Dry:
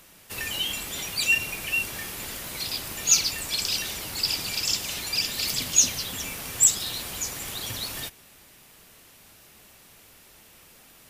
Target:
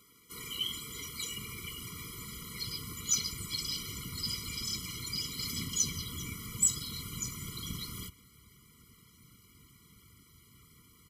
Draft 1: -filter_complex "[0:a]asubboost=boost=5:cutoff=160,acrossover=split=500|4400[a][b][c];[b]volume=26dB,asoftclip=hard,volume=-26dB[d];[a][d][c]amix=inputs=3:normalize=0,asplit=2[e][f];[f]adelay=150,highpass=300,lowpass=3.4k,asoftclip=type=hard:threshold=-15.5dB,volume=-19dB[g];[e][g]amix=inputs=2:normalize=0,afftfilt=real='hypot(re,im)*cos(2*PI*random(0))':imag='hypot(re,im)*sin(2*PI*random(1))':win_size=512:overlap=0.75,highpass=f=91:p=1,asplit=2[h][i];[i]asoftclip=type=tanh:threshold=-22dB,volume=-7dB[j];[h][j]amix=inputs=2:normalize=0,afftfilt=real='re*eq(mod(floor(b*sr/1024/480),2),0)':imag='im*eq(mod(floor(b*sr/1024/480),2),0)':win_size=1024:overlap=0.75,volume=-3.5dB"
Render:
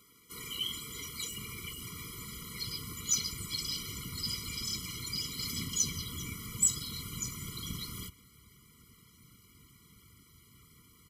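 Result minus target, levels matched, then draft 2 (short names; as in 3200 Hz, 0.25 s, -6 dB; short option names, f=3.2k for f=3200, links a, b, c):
overloaded stage: distortion +22 dB
-filter_complex "[0:a]asubboost=boost=5:cutoff=160,acrossover=split=500|4400[a][b][c];[b]volume=16.5dB,asoftclip=hard,volume=-16.5dB[d];[a][d][c]amix=inputs=3:normalize=0,asplit=2[e][f];[f]adelay=150,highpass=300,lowpass=3.4k,asoftclip=type=hard:threshold=-15.5dB,volume=-19dB[g];[e][g]amix=inputs=2:normalize=0,afftfilt=real='hypot(re,im)*cos(2*PI*random(0))':imag='hypot(re,im)*sin(2*PI*random(1))':win_size=512:overlap=0.75,highpass=f=91:p=1,asplit=2[h][i];[i]asoftclip=type=tanh:threshold=-22dB,volume=-7dB[j];[h][j]amix=inputs=2:normalize=0,afftfilt=real='re*eq(mod(floor(b*sr/1024/480),2),0)':imag='im*eq(mod(floor(b*sr/1024/480),2),0)':win_size=1024:overlap=0.75,volume=-3.5dB"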